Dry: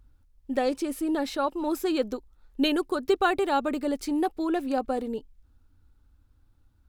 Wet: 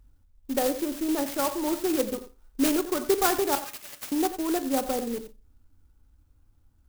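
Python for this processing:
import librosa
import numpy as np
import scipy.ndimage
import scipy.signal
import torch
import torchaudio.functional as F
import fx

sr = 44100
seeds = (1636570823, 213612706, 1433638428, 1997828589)

y = fx.highpass_res(x, sr, hz=2700.0, q=2.8, at=(3.55, 4.12))
y = y + 10.0 ** (-12.5 / 20.0) * np.pad(y, (int(90 * sr / 1000.0), 0))[:len(y)]
y = fx.rev_schroeder(y, sr, rt60_s=0.32, comb_ms=26, drr_db=11.0)
y = fx.clock_jitter(y, sr, seeds[0], jitter_ms=0.1)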